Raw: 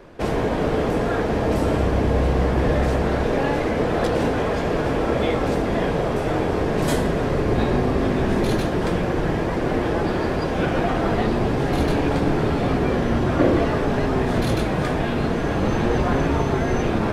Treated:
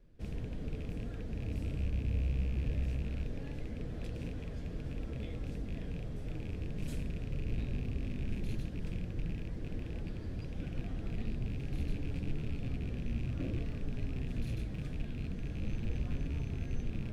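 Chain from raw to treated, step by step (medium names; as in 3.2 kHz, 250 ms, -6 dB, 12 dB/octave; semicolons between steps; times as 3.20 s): rattle on loud lows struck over -21 dBFS, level -15 dBFS; peaking EQ 370 Hz -5 dB 0.21 oct; flange 1.6 Hz, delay 3.3 ms, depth 8.4 ms, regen +73%; amplifier tone stack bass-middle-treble 10-0-1; trim +2.5 dB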